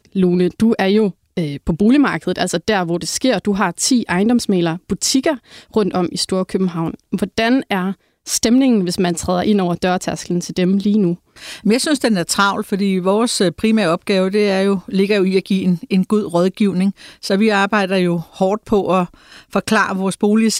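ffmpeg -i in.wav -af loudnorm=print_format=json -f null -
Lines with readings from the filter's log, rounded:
"input_i" : "-16.9",
"input_tp" : "-2.0",
"input_lra" : "1.4",
"input_thresh" : "-27.0",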